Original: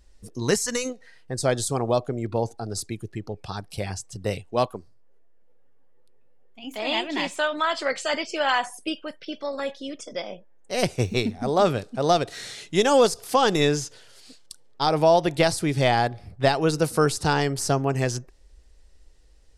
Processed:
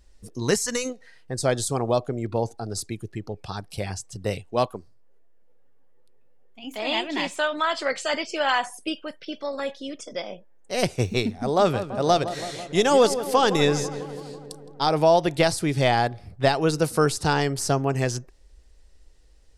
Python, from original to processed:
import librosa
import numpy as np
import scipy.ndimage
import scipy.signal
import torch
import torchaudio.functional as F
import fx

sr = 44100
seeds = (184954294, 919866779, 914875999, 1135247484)

y = fx.echo_filtered(x, sr, ms=165, feedback_pct=72, hz=1900.0, wet_db=-11.5, at=(11.57, 14.97))